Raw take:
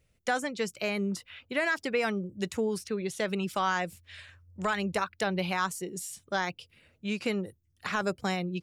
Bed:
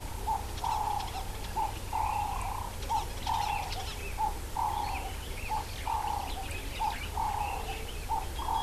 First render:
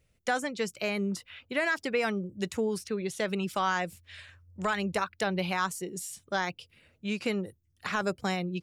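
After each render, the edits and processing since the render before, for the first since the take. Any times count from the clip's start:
no processing that can be heard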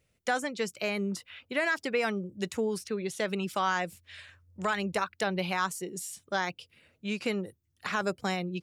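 low-shelf EQ 75 Hz −10.5 dB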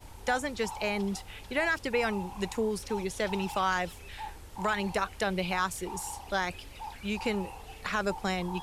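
mix in bed −9.5 dB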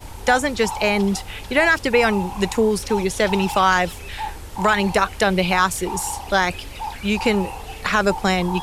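level +12 dB

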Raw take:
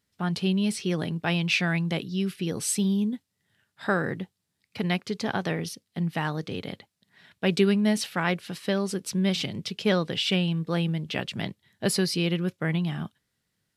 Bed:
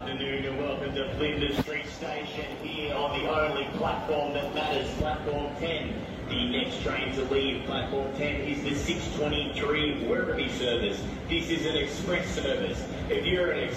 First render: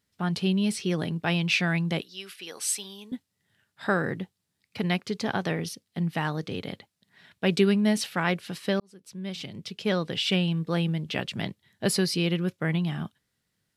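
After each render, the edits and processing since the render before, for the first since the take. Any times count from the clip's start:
0:02.01–0:03.12: high-pass filter 790 Hz
0:08.80–0:10.34: fade in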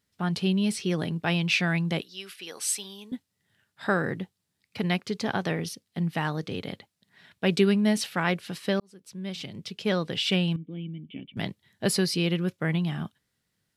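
0:10.56–0:11.37: formant resonators in series i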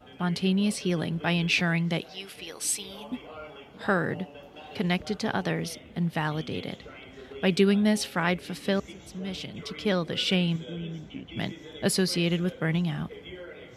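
mix in bed −16 dB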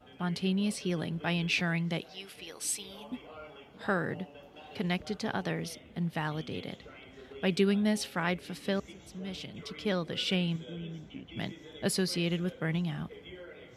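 level −5 dB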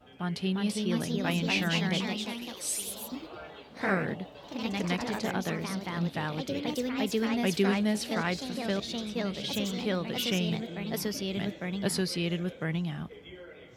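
delay with pitch and tempo change per echo 374 ms, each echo +2 semitones, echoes 3

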